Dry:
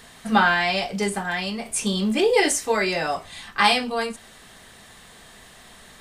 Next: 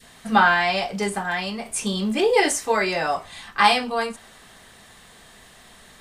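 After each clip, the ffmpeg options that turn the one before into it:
-af "adynamicequalizer=threshold=0.0282:dfrequency=1000:dqfactor=0.88:tfrequency=1000:tqfactor=0.88:attack=5:release=100:ratio=0.375:range=2.5:mode=boostabove:tftype=bell,volume=0.841"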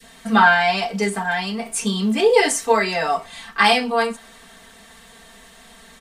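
-filter_complex "[0:a]aecho=1:1:4.4:0.85,acrossover=split=120|1200|5100[s0][s1][s2][s3];[s0]acompressor=threshold=0.00316:ratio=6[s4];[s4][s1][s2][s3]amix=inputs=4:normalize=0"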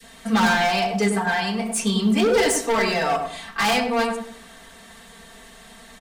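-filter_complex "[0:a]acrossover=split=240[s0][s1];[s1]asoftclip=type=hard:threshold=0.119[s2];[s0][s2]amix=inputs=2:normalize=0,asplit=2[s3][s4];[s4]adelay=99,lowpass=f=920:p=1,volume=0.708,asplit=2[s5][s6];[s6]adelay=99,lowpass=f=920:p=1,volume=0.37,asplit=2[s7][s8];[s8]adelay=99,lowpass=f=920:p=1,volume=0.37,asplit=2[s9][s10];[s10]adelay=99,lowpass=f=920:p=1,volume=0.37,asplit=2[s11][s12];[s12]adelay=99,lowpass=f=920:p=1,volume=0.37[s13];[s3][s5][s7][s9][s11][s13]amix=inputs=6:normalize=0"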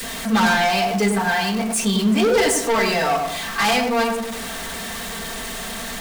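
-af "aeval=exprs='val(0)+0.5*0.0562*sgn(val(0))':c=same"

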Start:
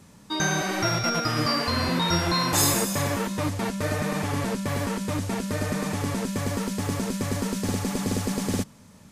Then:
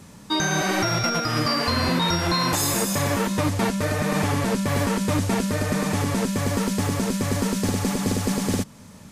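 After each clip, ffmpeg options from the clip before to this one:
-af "alimiter=limit=0.119:level=0:latency=1:release=218,volume=2"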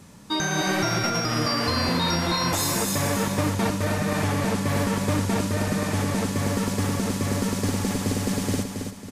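-af "aecho=1:1:273|546|819|1092:0.501|0.185|0.0686|0.0254,volume=0.75"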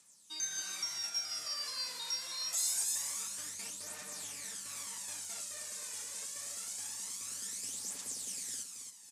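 -af "bandpass=f=7900:t=q:w=1.8:csg=0,aphaser=in_gain=1:out_gain=1:delay=2.1:decay=0.5:speed=0.25:type=triangular,volume=0.708"

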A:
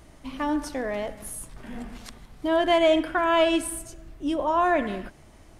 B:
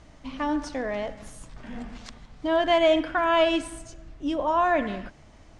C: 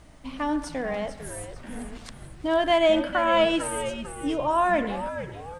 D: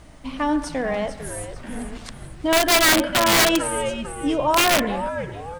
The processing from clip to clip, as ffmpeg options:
-af "lowpass=f=7200:w=0.5412,lowpass=f=7200:w=1.3066,equalizer=f=370:w=7.6:g=-8"
-filter_complex "[0:a]aexciter=amount=3.6:drive=7.3:freq=8700,asplit=5[s0][s1][s2][s3][s4];[s1]adelay=448,afreqshift=-99,volume=0.299[s5];[s2]adelay=896,afreqshift=-198,volume=0.126[s6];[s3]adelay=1344,afreqshift=-297,volume=0.0525[s7];[s4]adelay=1792,afreqshift=-396,volume=0.0221[s8];[s0][s5][s6][s7][s8]amix=inputs=5:normalize=0"
-af "aeval=exprs='(mod(6.31*val(0)+1,2)-1)/6.31':c=same,volume=1.78"

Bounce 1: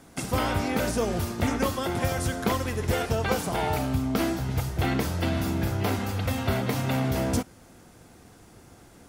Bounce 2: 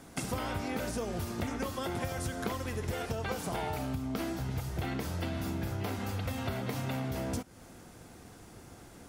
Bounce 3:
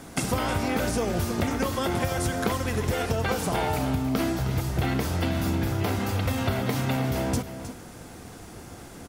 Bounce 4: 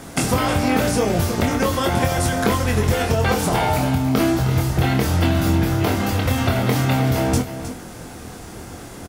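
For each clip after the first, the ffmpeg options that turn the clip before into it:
-af "acompressor=threshold=0.0251:ratio=6"
-af "aecho=1:1:313:0.266,volume=2.66"
-filter_complex "[0:a]asplit=2[s0][s1];[s1]adelay=24,volume=0.562[s2];[s0][s2]amix=inputs=2:normalize=0,volume=2"

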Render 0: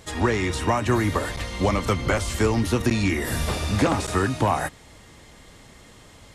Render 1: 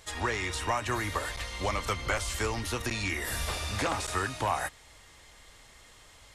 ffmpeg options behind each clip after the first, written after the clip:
-af "equalizer=f=200:w=0.48:g=-13.5,volume=0.708"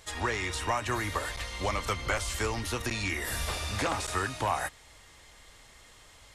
-af anull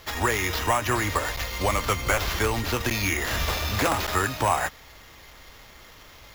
-af "acrusher=samples=5:mix=1:aa=0.000001,volume=2.11"

